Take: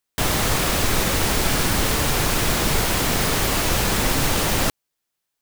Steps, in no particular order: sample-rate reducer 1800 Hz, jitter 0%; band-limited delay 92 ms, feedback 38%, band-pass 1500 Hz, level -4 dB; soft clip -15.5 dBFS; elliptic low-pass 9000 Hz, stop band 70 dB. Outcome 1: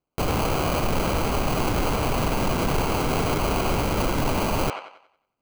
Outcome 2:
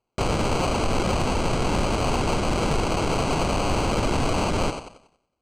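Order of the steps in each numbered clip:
elliptic low-pass > sample-rate reducer > band-limited delay > soft clip; band-limited delay > sample-rate reducer > elliptic low-pass > soft clip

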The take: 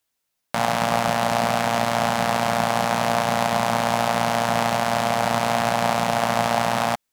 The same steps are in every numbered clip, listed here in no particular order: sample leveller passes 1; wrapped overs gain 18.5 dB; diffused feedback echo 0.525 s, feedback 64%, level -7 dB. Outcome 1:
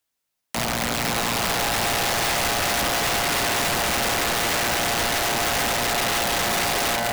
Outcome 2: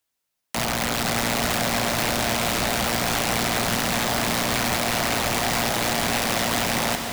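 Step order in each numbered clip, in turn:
diffused feedback echo > wrapped overs > sample leveller; wrapped overs > sample leveller > diffused feedback echo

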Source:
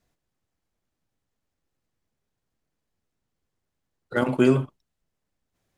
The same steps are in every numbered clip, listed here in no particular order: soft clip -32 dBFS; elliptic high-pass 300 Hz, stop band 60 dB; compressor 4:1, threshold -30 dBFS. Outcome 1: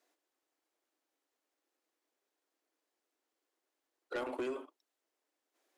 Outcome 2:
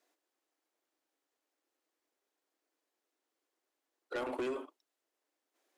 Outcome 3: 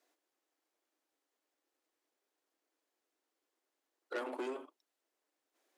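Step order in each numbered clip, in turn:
compressor > elliptic high-pass > soft clip; elliptic high-pass > compressor > soft clip; compressor > soft clip > elliptic high-pass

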